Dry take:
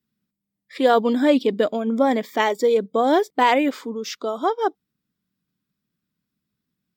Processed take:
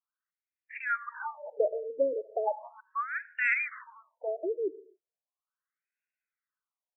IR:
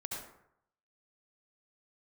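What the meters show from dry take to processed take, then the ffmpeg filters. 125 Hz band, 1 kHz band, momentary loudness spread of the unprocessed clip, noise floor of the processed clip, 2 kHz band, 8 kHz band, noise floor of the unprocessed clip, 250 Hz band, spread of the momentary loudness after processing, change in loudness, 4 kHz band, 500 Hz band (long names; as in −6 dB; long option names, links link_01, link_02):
can't be measured, −15.5 dB, 9 LU, below −85 dBFS, −3.0 dB, below −35 dB, −83 dBFS, −26.0 dB, 12 LU, −12.0 dB, below −35 dB, −12.0 dB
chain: -filter_complex "[0:a]aemphasis=mode=production:type=riaa,asplit=2[link_01][link_02];[1:a]atrim=start_sample=2205,afade=type=out:start_time=0.34:duration=0.01,atrim=end_sample=15435[link_03];[link_02][link_03]afir=irnorm=-1:irlink=0,volume=-16.5dB[link_04];[link_01][link_04]amix=inputs=2:normalize=0,afftfilt=real='re*between(b*sr/1024,410*pow(2000/410,0.5+0.5*sin(2*PI*0.37*pts/sr))/1.41,410*pow(2000/410,0.5+0.5*sin(2*PI*0.37*pts/sr))*1.41)':imag='im*between(b*sr/1024,410*pow(2000/410,0.5+0.5*sin(2*PI*0.37*pts/sr))/1.41,410*pow(2000/410,0.5+0.5*sin(2*PI*0.37*pts/sr))*1.41)':win_size=1024:overlap=0.75,volume=-4dB"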